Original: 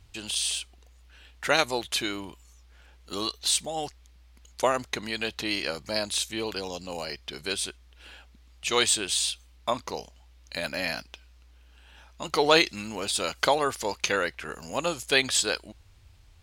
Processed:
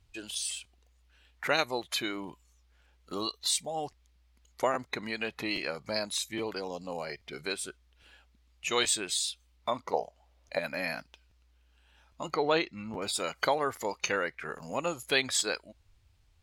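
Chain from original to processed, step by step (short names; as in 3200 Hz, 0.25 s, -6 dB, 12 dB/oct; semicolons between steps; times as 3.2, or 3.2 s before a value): spectral noise reduction 11 dB; 9.93–10.59 bell 650 Hz +14.5 dB 1.3 oct; in parallel at +1 dB: compressor, threshold -35 dBFS, peak gain reduction 19 dB; 12.34–13.02 on the sum: tape spacing loss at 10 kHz 20 dB; crackling interface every 0.82 s, samples 512, repeat, from 0.63; gain -6 dB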